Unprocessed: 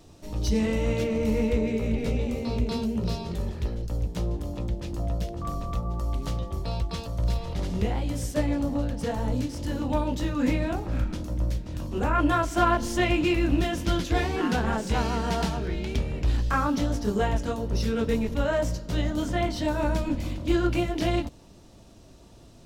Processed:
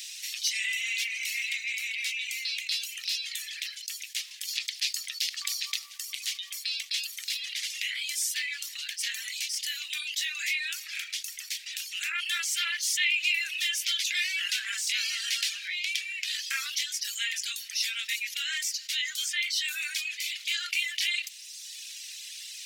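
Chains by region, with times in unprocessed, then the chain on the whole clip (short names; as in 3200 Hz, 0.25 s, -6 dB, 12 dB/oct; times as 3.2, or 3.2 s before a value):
4.47–5.85 bell 4600 Hz +7 dB 0.6 oct + whine 710 Hz -39 dBFS + fast leveller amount 50%
whole clip: reverb removal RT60 0.93 s; steep high-pass 2000 Hz 48 dB/oct; fast leveller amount 50%; gain +6.5 dB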